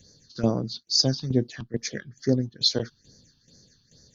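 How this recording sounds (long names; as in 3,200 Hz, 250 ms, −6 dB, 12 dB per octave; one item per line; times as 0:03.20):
phaser sweep stages 6, 2.3 Hz, lowest notch 510–2,800 Hz
tremolo saw down 2.3 Hz, depth 75%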